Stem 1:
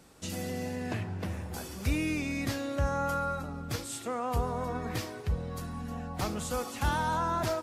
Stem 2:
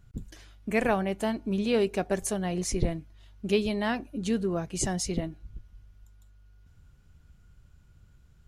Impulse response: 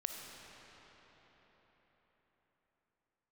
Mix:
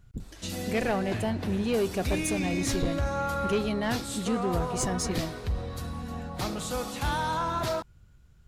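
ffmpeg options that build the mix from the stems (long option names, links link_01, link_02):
-filter_complex "[0:a]equalizer=frequency=3900:width=3.3:gain=6,flanger=delay=3:depth=3.9:regen=-74:speed=0.37:shape=sinusoidal,adelay=200,volume=2dB,asplit=2[link_01][link_02];[link_02]volume=-3dB[link_03];[1:a]volume=0.5dB[link_04];[2:a]atrim=start_sample=2205[link_05];[link_03][link_05]afir=irnorm=-1:irlink=0[link_06];[link_01][link_04][link_06]amix=inputs=3:normalize=0,asoftclip=type=tanh:threshold=-19.5dB"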